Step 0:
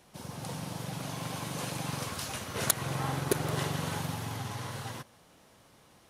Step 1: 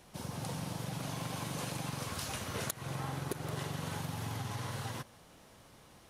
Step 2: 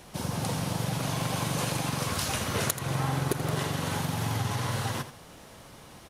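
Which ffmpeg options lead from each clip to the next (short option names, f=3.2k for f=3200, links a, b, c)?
-af "lowshelf=f=61:g=8.5,acompressor=threshold=-36dB:ratio=6,volume=1dB"
-af "aecho=1:1:82:0.237,volume=9dB"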